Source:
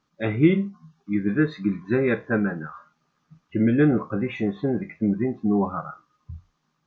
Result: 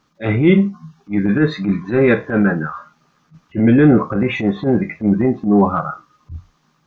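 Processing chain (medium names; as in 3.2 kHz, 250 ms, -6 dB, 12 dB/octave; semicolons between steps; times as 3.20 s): in parallel at +2 dB: peak limiter -14.5 dBFS, peak gain reduction 8.5 dB; on the sum: transient shaper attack -12 dB, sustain +1 dB; trim +4 dB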